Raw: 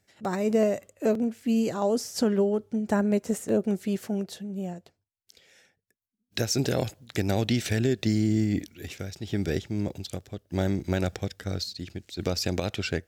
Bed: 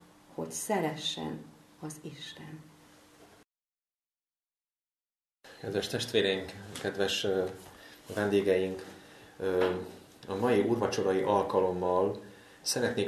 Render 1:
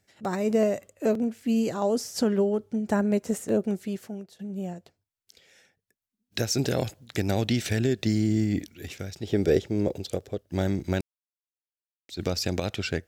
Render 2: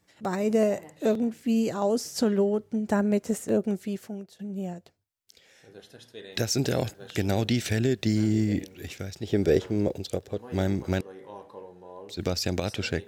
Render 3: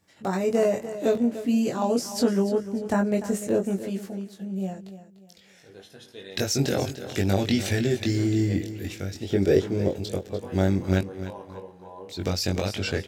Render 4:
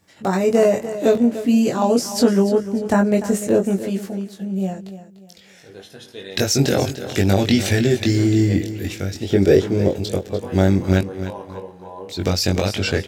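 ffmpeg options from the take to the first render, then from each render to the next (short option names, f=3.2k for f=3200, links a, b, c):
-filter_complex "[0:a]asettb=1/sr,asplit=3[a][b][c];[a]atrim=end=9.234[d];[b]atrim=start=9.23:end=10.41,asetpts=PTS-STARTPTS,afade=t=in:d=0.004:c=qsin,afade=t=out:st=1.176:d=0.004:c=qsin,equalizer=f=470:t=o:w=1:g=11[e];[c]atrim=start=10.406[f];[d][e]acrossfade=d=0.004:c1=hsin:c2=qsin[g];[g][f]acrossfade=d=0.004:c1=qsin:c2=hsin,asplit=4[h][i][j][k];[h]atrim=end=4.39,asetpts=PTS-STARTPTS,afade=t=out:st=3.58:d=0.81:silence=0.16788[l];[i]atrim=start=4.39:end=11.01,asetpts=PTS-STARTPTS,afade=t=in:d=0.004:c=hsin:silence=0.16788,afade=t=out:st=6.616:d=0.004:c=hsin[m];[j]atrim=start=11.01:end=12.09,asetpts=PTS-STARTPTS,volume=0[n];[k]atrim=start=12.09,asetpts=PTS-STARTPTS,afade=t=in:d=0.004:c=hsin[o];[l][m][n][o]concat=n=4:v=0:a=1"
-filter_complex "[1:a]volume=-16.5dB[a];[0:a][a]amix=inputs=2:normalize=0"
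-filter_complex "[0:a]asplit=2[a][b];[b]adelay=21,volume=-3dB[c];[a][c]amix=inputs=2:normalize=0,aecho=1:1:296|592|888:0.224|0.0716|0.0229"
-af "volume=7dB,alimiter=limit=-3dB:level=0:latency=1"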